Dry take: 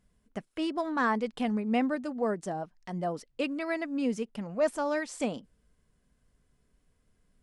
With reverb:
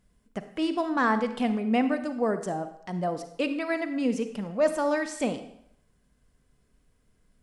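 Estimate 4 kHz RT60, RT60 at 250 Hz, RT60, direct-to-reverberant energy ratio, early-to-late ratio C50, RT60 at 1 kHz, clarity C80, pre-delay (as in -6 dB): 0.65 s, 0.70 s, 0.75 s, 9.5 dB, 10.5 dB, 0.75 s, 13.0 dB, 39 ms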